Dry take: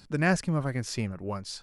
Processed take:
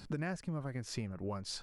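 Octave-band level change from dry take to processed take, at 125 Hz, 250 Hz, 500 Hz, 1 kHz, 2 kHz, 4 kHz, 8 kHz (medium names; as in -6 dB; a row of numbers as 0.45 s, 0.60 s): -9.5 dB, -10.0 dB, -10.0 dB, -12.0 dB, -14.5 dB, -5.5 dB, -8.5 dB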